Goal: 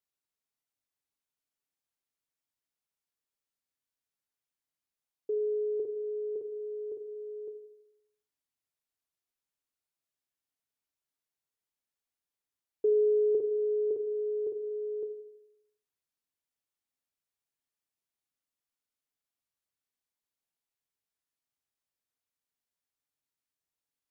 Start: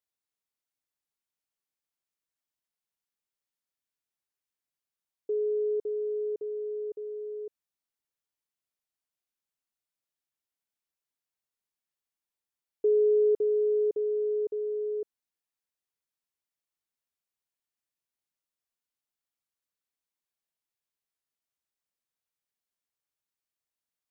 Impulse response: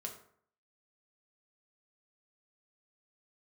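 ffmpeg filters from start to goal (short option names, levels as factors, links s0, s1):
-filter_complex "[0:a]asplit=2[s0][s1];[1:a]atrim=start_sample=2205,asetrate=28665,aresample=44100,lowshelf=f=340:g=4.5[s2];[s1][s2]afir=irnorm=-1:irlink=0,volume=0.562[s3];[s0][s3]amix=inputs=2:normalize=0,volume=0.562"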